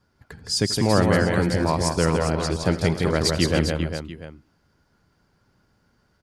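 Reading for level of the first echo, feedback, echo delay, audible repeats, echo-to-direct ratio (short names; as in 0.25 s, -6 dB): -18.5 dB, no steady repeat, 85 ms, 6, -2.0 dB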